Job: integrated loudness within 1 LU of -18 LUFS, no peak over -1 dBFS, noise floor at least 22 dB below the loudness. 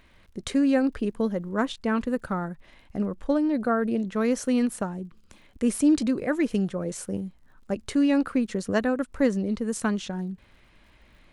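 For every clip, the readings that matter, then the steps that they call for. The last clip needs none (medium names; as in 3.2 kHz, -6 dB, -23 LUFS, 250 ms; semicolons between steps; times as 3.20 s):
tick rate 47 per s; loudness -26.5 LUFS; peak level -10.5 dBFS; loudness target -18.0 LUFS
-> de-click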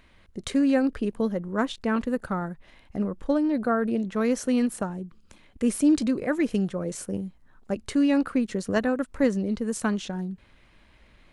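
tick rate 0 per s; loudness -26.5 LUFS; peak level -10.5 dBFS; loudness target -18.0 LUFS
-> trim +8.5 dB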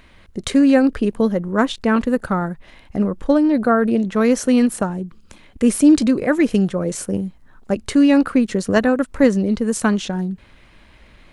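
loudness -18.0 LUFS; peak level -2.0 dBFS; noise floor -49 dBFS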